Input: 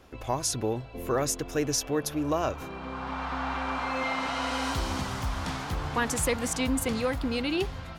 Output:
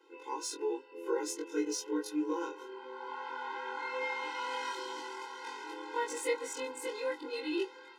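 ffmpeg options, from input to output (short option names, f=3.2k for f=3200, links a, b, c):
-af "afftfilt=real='re':imag='-im':win_size=2048:overlap=0.75,adynamicsmooth=sensitivity=7:basefreq=7.4k,afftfilt=real='re*eq(mod(floor(b*sr/1024/270),2),1)':imag='im*eq(mod(floor(b*sr/1024/270),2),1)':win_size=1024:overlap=0.75"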